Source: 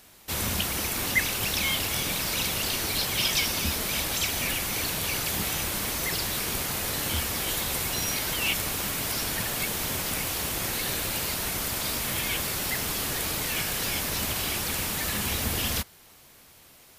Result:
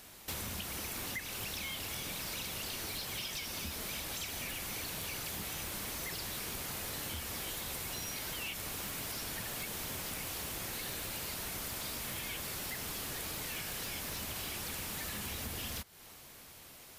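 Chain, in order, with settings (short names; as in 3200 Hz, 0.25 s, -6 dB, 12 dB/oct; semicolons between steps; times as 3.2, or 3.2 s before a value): compressor 12:1, threshold -36 dBFS, peak gain reduction 18 dB; soft clip -30 dBFS, distortion -23 dB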